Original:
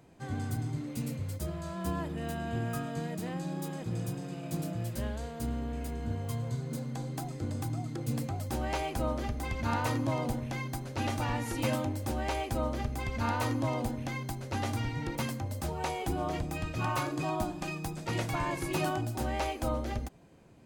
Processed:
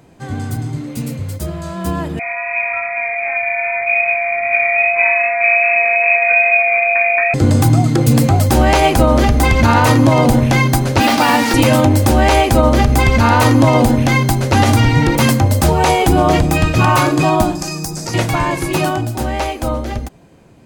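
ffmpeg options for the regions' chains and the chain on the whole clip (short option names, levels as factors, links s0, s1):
-filter_complex "[0:a]asettb=1/sr,asplit=3[s0][s1][s2];[s0]atrim=end=2.194[s3];[s1]atrim=start=2.19:end=7.34,asetpts=PTS-STARTPTS,afade=t=in:d=0.004:c=qsin,afade=t=out:st=5.146:d=0.004:c=qsin,lowpass=f=2200:t=q:w=0.5098,lowpass=f=2200:t=q:w=0.6013,lowpass=f=2200:t=q:w=0.9,lowpass=f=2200:t=q:w=2.563,afreqshift=-2600,flanger=delay=18.5:depth=2.9:speed=2.5,aeval=exprs='val(0)+0.0112*sin(2*PI*690*n/s)':c=same[s4];[s2]atrim=start=7.336[s5];[s3][s4]acrossfade=d=0.004:c1=hsin:c2=qsin[s6];[s6][s5]acrossfade=d=0.004:c1=qsin:c2=hsin,asettb=1/sr,asplit=3[s7][s8][s9];[s7]atrim=end=11.004[s10];[s8]atrim=start=11:end=11.54,asetpts=PTS-STARTPTS,afade=t=in:d=0.004:c=qsin,afade=t=out:st=0.536:d=0.004:c=qsin,highpass=f=200:w=0.5412,highpass=f=200:w=1.3066,equalizer=f=370:t=q:w=4:g=-8,equalizer=f=530:t=q:w=4:g=-3,equalizer=f=4800:t=q:w=4:g=5,lowpass=f=5300:w=0.5412,lowpass=f=5300:w=1.3066,acrusher=bits=6:mix=0:aa=0.5[s11];[s9]atrim=start=11.536[s12];[s10][s11]acrossfade=d=0.004:c1=hsin:c2=qsin[s13];[s13][s12]acrossfade=d=0.004:c1=qsin:c2=hsin,asettb=1/sr,asplit=3[s14][s15][s16];[s14]atrim=end=17.554[s17];[s15]atrim=start=17.55:end=18.14,asetpts=PTS-STARTPTS,afade=t=in:d=0.004:c=qsin,afade=t=out:st=0.586:d=0.004:c=qsin,highshelf=f=4200:t=q:w=3:g=8,acompressor=threshold=0.0126:ratio=4:attack=3.2:release=140:knee=1:detection=peak[s18];[s16]atrim=start=18.136[s19];[s17][s18]acrossfade=d=0.004:c1=hsin:c2=qsin[s20];[s20][s19]acrossfade=d=0.004:c1=qsin:c2=hsin,dynaudnorm=f=450:g=17:m=3.98,alimiter=level_in=4.47:limit=0.891:release=50:level=0:latency=1,volume=0.891"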